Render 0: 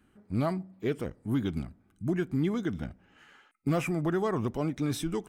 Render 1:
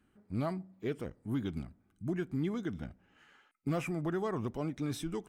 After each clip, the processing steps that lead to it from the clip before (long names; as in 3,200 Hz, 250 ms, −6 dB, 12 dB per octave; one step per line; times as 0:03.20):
high-shelf EQ 11,000 Hz −3 dB
level −5.5 dB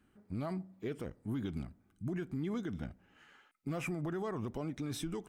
brickwall limiter −30.5 dBFS, peak gain reduction 6.5 dB
level +1 dB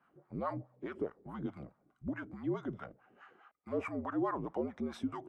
frequency shifter −62 Hz
LFO wah 4.7 Hz 350–1,200 Hz, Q 2.3
level +11 dB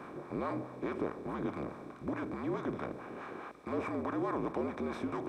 compressor on every frequency bin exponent 0.4
reversed playback
upward compression, threshold −37 dBFS
reversed playback
level −4 dB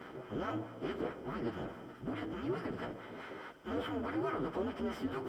partials spread apart or drawn together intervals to 113%
level +1.5 dB